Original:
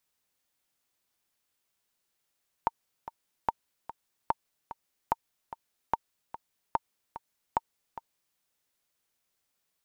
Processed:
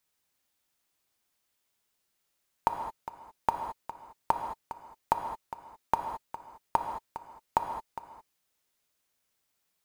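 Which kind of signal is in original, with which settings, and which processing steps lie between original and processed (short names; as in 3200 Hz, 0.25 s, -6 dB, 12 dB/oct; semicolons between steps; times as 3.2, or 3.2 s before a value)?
metronome 147 bpm, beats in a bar 2, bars 7, 915 Hz, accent 14 dB -11.5 dBFS
in parallel at -9 dB: companded quantiser 4-bit; on the sum: non-linear reverb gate 0.24 s flat, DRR 4.5 dB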